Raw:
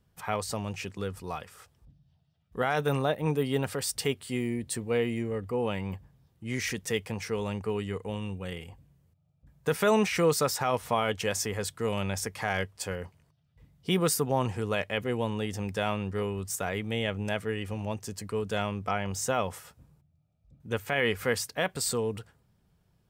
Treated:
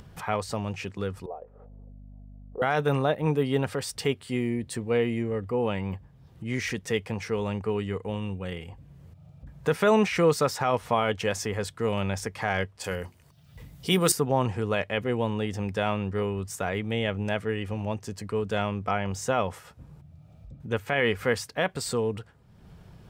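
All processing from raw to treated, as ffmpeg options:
-filter_complex "[0:a]asettb=1/sr,asplit=3[s0][s1][s2];[s0]atrim=end=1.264[s3];[s1]atrim=start=1.26:end=2.62,asetpts=PTS-STARTPTS,afade=t=in:d=0.004:c=qsin,afade=t=out:st=1.356:d=0.004:c=qsin,asuperpass=centerf=540:order=4:qfactor=1.8,aeval=exprs='val(0)+0.000891*(sin(2*PI*50*n/s)+sin(2*PI*2*50*n/s)/2+sin(2*PI*3*50*n/s)/3+sin(2*PI*4*50*n/s)/4+sin(2*PI*5*50*n/s)/5)':c=same[s4];[s2]atrim=start=2.616[s5];[s3][s4]acrossfade=d=0.004:c1=hsin:c2=qsin[s6];[s6][s5]acrossfade=d=0.004:c1=qsin:c2=hsin,asettb=1/sr,asplit=3[s7][s8][s9];[s7]atrim=end=12.844[s10];[s8]atrim=start=12.84:end=14.12,asetpts=PTS-STARTPTS,afade=t=in:d=0.004:c=qsin,afade=t=out:st=1.276:d=0.004:c=qsin,aemphasis=mode=production:type=75kf,bandreject=f=50:t=h:w=6,bandreject=f=100:t=h:w=6,bandreject=f=150:t=h:w=6,bandreject=f=200:t=h:w=6,bandreject=f=250:t=h:w=6,bandreject=f=300:t=h:w=6,bandreject=f=350:t=h:w=6[s11];[s9]atrim=start=14.116[s12];[s10][s11]acrossfade=d=0.004:c1=hsin:c2=qsin[s13];[s13][s12]acrossfade=d=0.004:c1=qsin:c2=hsin,lowpass=f=3500:p=1,acompressor=mode=upward:threshold=0.0141:ratio=2.5,volume=1.41"

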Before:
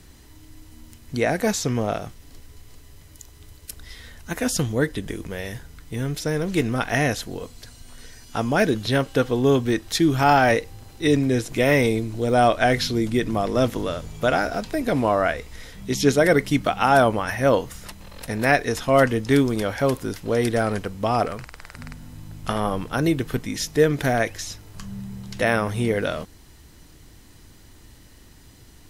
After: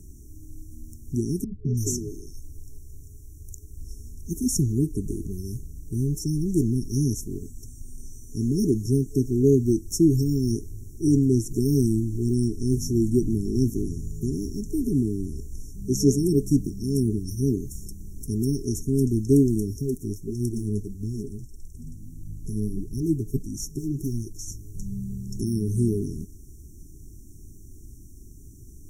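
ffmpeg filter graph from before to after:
-filter_complex "[0:a]asettb=1/sr,asplit=3[s0][s1][s2];[s0]atrim=end=1.444[s3];[s1]atrim=start=1.44:end=3.82,asetpts=PTS-STARTPTS,afade=t=in:d=0.004:c=qsin,afade=t=out:st=2.376:d=0.004:c=qsin,bandreject=f=210:w=5.7,acrossover=split=250|3200[s4][s5][s6];[s5]adelay=210[s7];[s6]adelay=330[s8];[s4][s7][s8]amix=inputs=3:normalize=0,atrim=end_sample=104958[s9];[s2]atrim=start=3.816[s10];[s3][s9]acrossfade=d=0.004:c1=hsin:c2=qsin[s11];[s11][s10]acrossfade=d=0.004:c1=qsin:c2=hsin,asettb=1/sr,asplit=3[s12][s13][s14];[s12]atrim=end=19.814[s15];[s13]atrim=start=19.81:end=24.48,asetpts=PTS-STARTPTS,afade=t=in:d=0.004:c=qsin,afade=t=out:st=4.666:d=0.004:c=qsin,volume=5.96,asoftclip=hard,volume=0.168,flanger=delay=0.8:depth=9:regen=33:speed=1.6:shape=sinusoidal[s16];[s14]atrim=start=24.476[s17];[s15][s16]acrossfade=d=0.004:c1=hsin:c2=qsin[s18];[s18][s17]acrossfade=d=0.004:c1=qsin:c2=hsin,lowshelf=f=93:g=7,afftfilt=real='re*(1-between(b*sr/4096,420,5400))':imag='im*(1-between(b*sr/4096,420,5400))':win_size=4096:overlap=0.75"

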